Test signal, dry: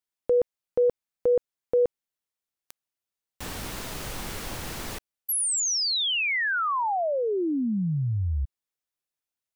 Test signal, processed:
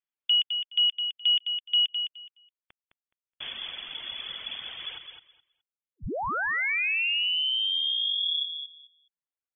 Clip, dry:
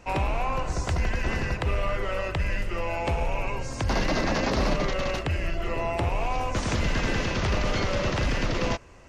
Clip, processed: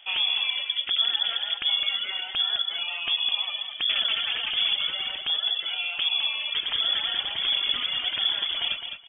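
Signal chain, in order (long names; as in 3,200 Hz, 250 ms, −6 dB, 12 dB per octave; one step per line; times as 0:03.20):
reverb reduction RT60 1.9 s
high-frequency loss of the air 310 metres
on a send: repeating echo 210 ms, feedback 18%, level −7.5 dB
on the sum: voice inversion scrambler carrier 3,400 Hz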